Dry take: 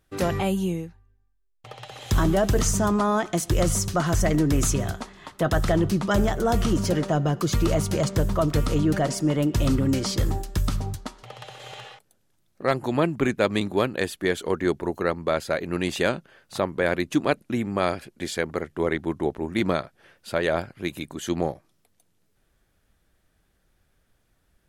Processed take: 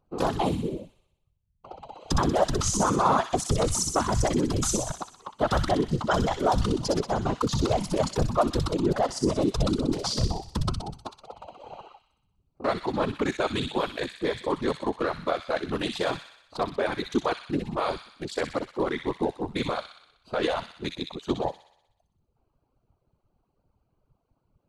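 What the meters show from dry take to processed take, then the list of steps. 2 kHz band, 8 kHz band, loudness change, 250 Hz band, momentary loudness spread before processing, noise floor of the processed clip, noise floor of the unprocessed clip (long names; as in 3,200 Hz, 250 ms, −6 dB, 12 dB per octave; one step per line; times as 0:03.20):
−5.0 dB, −1.0 dB, −2.5 dB, −4.0 dB, 11 LU, −75 dBFS, −68 dBFS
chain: adaptive Wiener filter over 25 samples
low-pass filter 11,000 Hz 24 dB per octave
parametric band 120 Hz −5.5 dB 0.97 octaves
mains-hum notches 60/120/180 Hz
brickwall limiter −16 dBFS, peak gain reduction 7.5 dB
octave-band graphic EQ 1,000/2,000/4,000 Hz +8/−4/+6 dB
random phases in short frames
reverb reduction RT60 0.7 s
on a send: delay with a high-pass on its return 62 ms, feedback 61%, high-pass 2,400 Hz, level −3.5 dB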